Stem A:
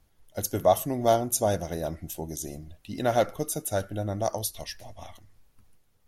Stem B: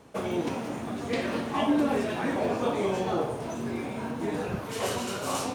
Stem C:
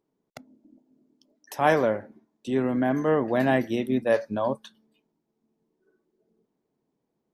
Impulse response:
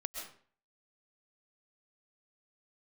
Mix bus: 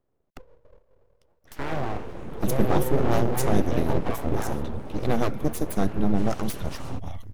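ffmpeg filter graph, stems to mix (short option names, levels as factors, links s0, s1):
-filter_complex "[0:a]highshelf=f=12000:g=10,adelay=2050,volume=1.06[s0];[1:a]alimiter=limit=0.0668:level=0:latency=1:release=36,adelay=1450,volume=0.422[s1];[2:a]highshelf=f=8100:g=9,alimiter=limit=0.119:level=0:latency=1,volume=0.75[s2];[s0][s1][s2]amix=inputs=3:normalize=0,bass=f=250:g=15,treble=f=4000:g=-8,acrossover=split=380|3000[s3][s4][s5];[s4]acompressor=threshold=0.0501:ratio=3[s6];[s3][s6][s5]amix=inputs=3:normalize=0,aeval=exprs='abs(val(0))':c=same"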